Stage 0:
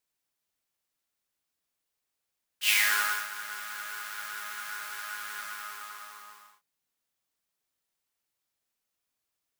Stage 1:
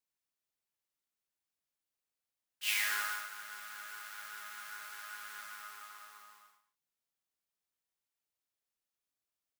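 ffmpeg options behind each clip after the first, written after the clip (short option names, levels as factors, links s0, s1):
-af "aecho=1:1:143:0.224,volume=0.376"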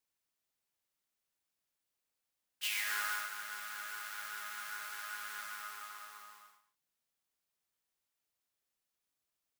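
-af "alimiter=level_in=1.58:limit=0.0631:level=0:latency=1:release=243,volume=0.631,volume=1.41"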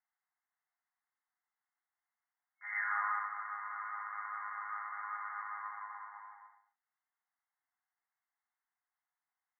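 -af "afftfilt=real='re*between(b*sr/4096,900,2400)':imag='im*between(b*sr/4096,900,2400)':win_size=4096:overlap=0.75,afreqshift=-220,volume=1.5"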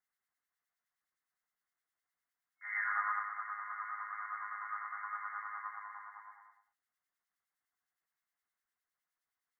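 -filter_complex "[0:a]equalizer=f=860:t=o:w=0.38:g=-8.5,acrossover=split=1800[s0][s1];[s0]aeval=exprs='val(0)*(1-0.7/2+0.7/2*cos(2*PI*9.7*n/s))':c=same[s2];[s1]aeval=exprs='val(0)*(1-0.7/2-0.7/2*cos(2*PI*9.7*n/s))':c=same[s3];[s2][s3]amix=inputs=2:normalize=0,volume=1.68"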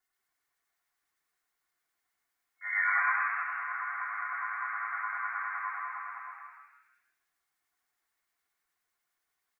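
-filter_complex "[0:a]aecho=1:1:2.8:0.83,asplit=6[s0][s1][s2][s3][s4][s5];[s1]adelay=159,afreqshift=130,volume=0.631[s6];[s2]adelay=318,afreqshift=260,volume=0.245[s7];[s3]adelay=477,afreqshift=390,volume=0.0955[s8];[s4]adelay=636,afreqshift=520,volume=0.0376[s9];[s5]adelay=795,afreqshift=650,volume=0.0146[s10];[s0][s6][s7][s8][s9][s10]amix=inputs=6:normalize=0,volume=1.58"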